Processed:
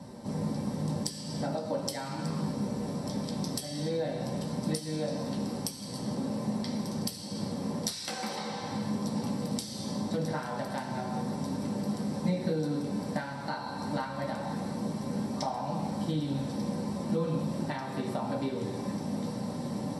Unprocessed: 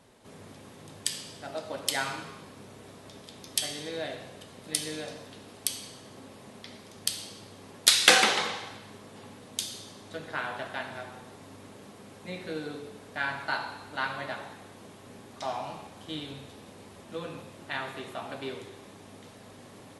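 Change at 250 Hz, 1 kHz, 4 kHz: +12.5, -1.0, -10.5 dB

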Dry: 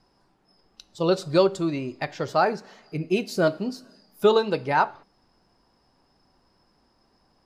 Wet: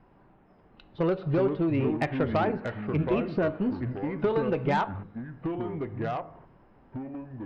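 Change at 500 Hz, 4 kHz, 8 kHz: -4.5 dB, -12.0 dB, under -15 dB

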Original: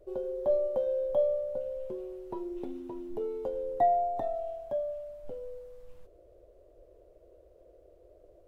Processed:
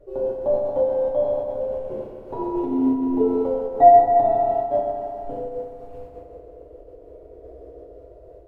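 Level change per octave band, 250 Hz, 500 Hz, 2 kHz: +18.0 dB, +10.5 dB, n/a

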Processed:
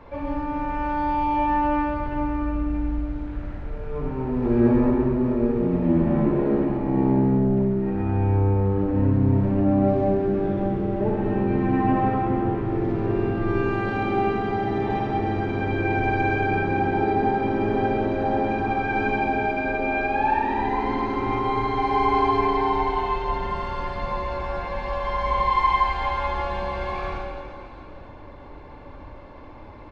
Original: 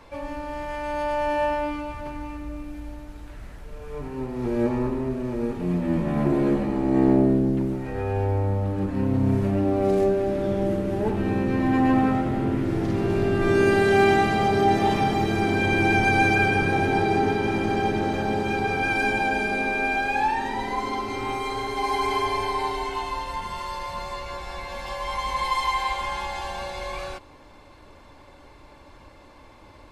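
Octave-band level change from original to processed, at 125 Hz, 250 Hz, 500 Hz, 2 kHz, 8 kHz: +2.5 dB, +1.5 dB, 0.0 dB, -4.0 dB, under -15 dB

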